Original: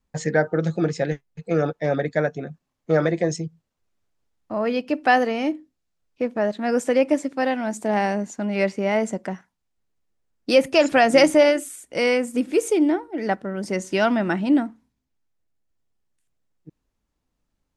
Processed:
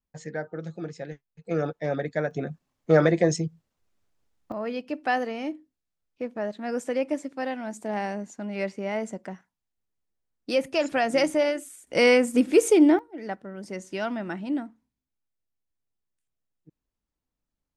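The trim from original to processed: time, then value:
-13 dB
from 1.45 s -5.5 dB
from 2.31 s +1 dB
from 4.52 s -8 dB
from 11.87 s +2 dB
from 12.99 s -10 dB

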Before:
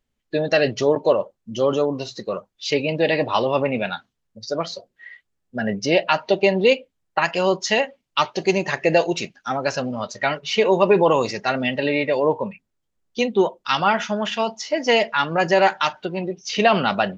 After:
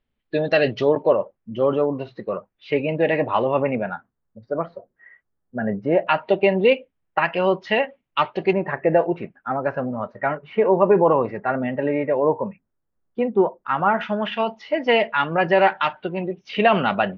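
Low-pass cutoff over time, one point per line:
low-pass 24 dB/octave
3.8 kHz
from 1.02 s 2.4 kHz
from 3.75 s 1.6 kHz
from 6.07 s 2.8 kHz
from 8.53 s 1.7 kHz
from 14.01 s 3 kHz

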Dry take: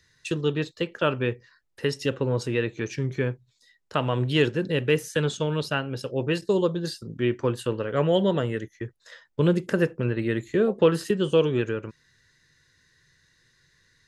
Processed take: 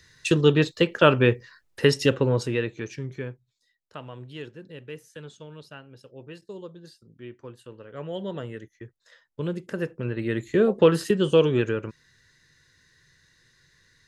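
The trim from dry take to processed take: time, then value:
1.96 s +7 dB
2.98 s -5.5 dB
4.30 s -17 dB
7.69 s -17 dB
8.42 s -8.5 dB
9.65 s -8.5 dB
10.58 s +2 dB

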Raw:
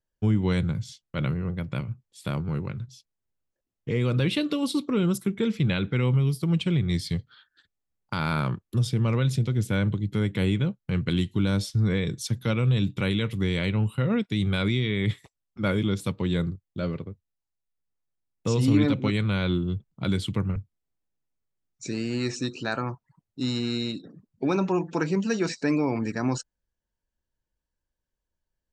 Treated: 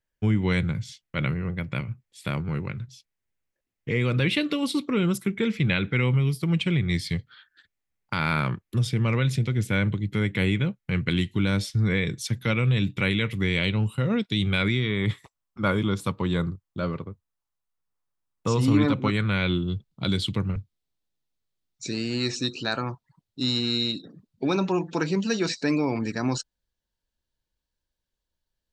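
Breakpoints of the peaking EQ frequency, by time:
peaking EQ +8.5 dB 0.87 oct
13.52 s 2.1 kHz
13.98 s 7.2 kHz
14.93 s 1.1 kHz
19.06 s 1.1 kHz
19.71 s 3.9 kHz

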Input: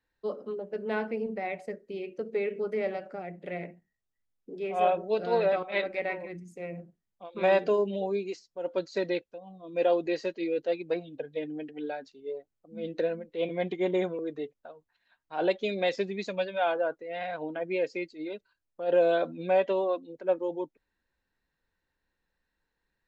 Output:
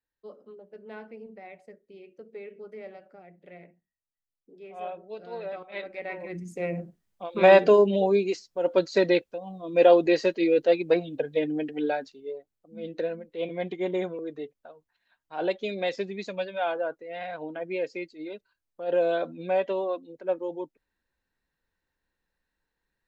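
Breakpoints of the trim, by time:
5.35 s -11.5 dB
6.05 s -4.5 dB
6.45 s +8 dB
11.96 s +8 dB
12.37 s -1 dB

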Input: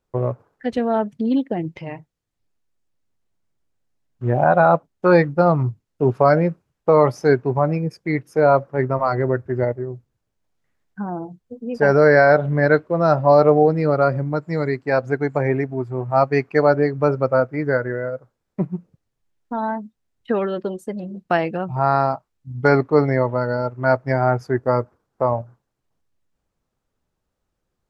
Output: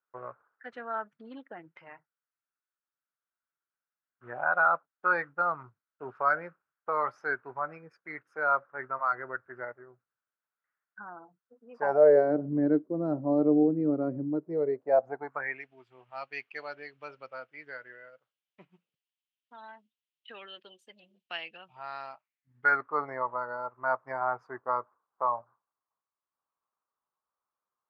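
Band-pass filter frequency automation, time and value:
band-pass filter, Q 4.5
11.68 s 1.4 kHz
12.35 s 290 Hz
14.26 s 290 Hz
15.24 s 910 Hz
15.64 s 3 kHz
22.01 s 3 kHz
23.03 s 1.1 kHz

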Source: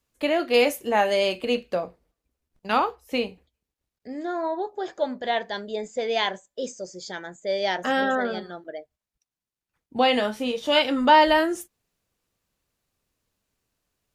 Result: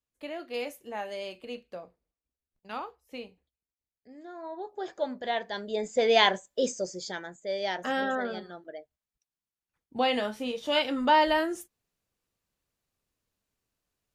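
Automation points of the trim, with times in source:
4.35 s -15 dB
4.82 s -5 dB
5.47 s -5 dB
6.05 s +3.5 dB
6.80 s +3.5 dB
7.42 s -6 dB

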